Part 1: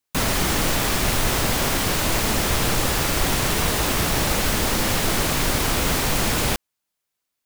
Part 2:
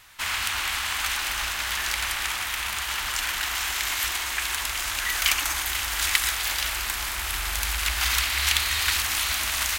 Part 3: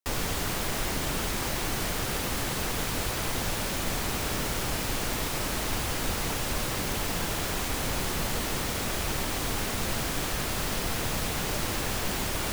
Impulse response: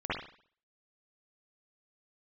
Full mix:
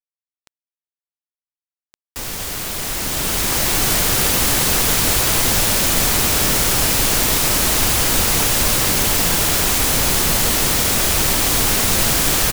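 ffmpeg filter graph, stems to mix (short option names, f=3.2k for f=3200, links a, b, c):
-filter_complex "[0:a]aeval=exprs='(mod(7.5*val(0)+1,2)-1)/7.5':c=same,adelay=2250,volume=-11dB[a];[1:a]lowpass=8.5k,volume=-17.5dB[b];[2:a]highshelf=f=4k:g=9,dynaudnorm=f=220:g=11:m=12dB,adelay=2100,volume=-0.5dB[c];[a][b][c]amix=inputs=3:normalize=0,aeval=exprs='val(0)*gte(abs(val(0)),0.0335)':c=same"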